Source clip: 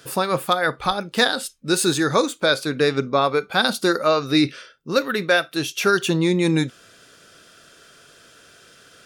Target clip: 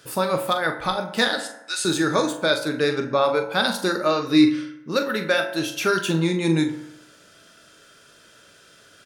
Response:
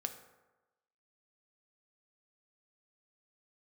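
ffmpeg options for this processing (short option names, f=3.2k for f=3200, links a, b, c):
-filter_complex "[0:a]asettb=1/sr,asplit=3[a][b][c];[a]atrim=end=1.404[d];[b]atrim=start=1.4:end=1.85,asetpts=PTS-STARTPTS,afade=t=in:d=0.004:c=qsin,afade=t=out:st=0.446:d=0.004:c=qsin,asuperpass=centerf=3800:order=4:qfactor=0.5[e];[c]atrim=start=1.846[f];[d][e]acrossfade=d=0.004:c1=hsin:c2=qsin[g];[g][f]acrossfade=d=0.004:c1=qsin:c2=hsin,asplit=2[h][i];[i]adelay=42,volume=-9.5dB[j];[h][j]amix=inputs=2:normalize=0[k];[1:a]atrim=start_sample=2205,asetrate=52920,aresample=44100[l];[k][l]afir=irnorm=-1:irlink=0"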